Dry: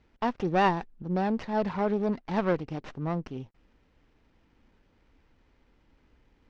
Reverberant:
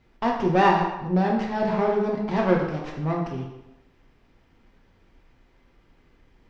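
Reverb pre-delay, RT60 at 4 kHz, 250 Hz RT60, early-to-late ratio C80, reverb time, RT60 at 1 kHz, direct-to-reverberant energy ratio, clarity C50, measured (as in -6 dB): 3 ms, 0.75 s, 0.85 s, 6.0 dB, 0.95 s, 0.90 s, -1.5 dB, 4.0 dB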